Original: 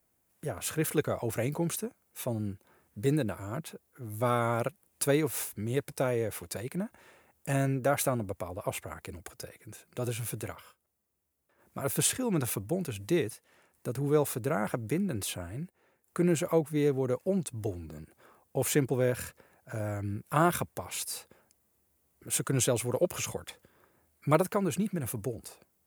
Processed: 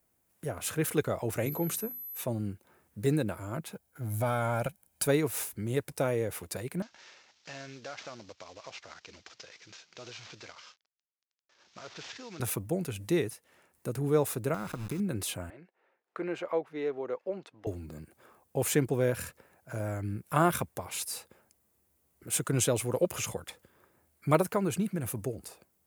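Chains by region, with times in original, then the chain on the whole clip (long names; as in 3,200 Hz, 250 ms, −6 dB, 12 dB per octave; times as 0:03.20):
0:01.45–0:02.20: high-pass filter 130 Hz + mains-hum notches 60/120/180/240/300/360 Hz + steady tone 12,000 Hz −39 dBFS
0:03.73–0:05.07: downward compressor 2.5 to 1, threshold −30 dBFS + leveller curve on the samples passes 1 + comb filter 1.3 ms, depth 51%
0:06.82–0:12.40: variable-slope delta modulation 32 kbit/s + spectral tilt +4 dB per octave + downward compressor 2 to 1, threshold −48 dBFS
0:14.54–0:15.00: hold until the input has moved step −39 dBFS + downward compressor 4 to 1, threshold −32 dBFS + comb filter 0.8 ms, depth 39%
0:15.50–0:17.67: high-pass filter 480 Hz + high-frequency loss of the air 250 metres
whole clip: no processing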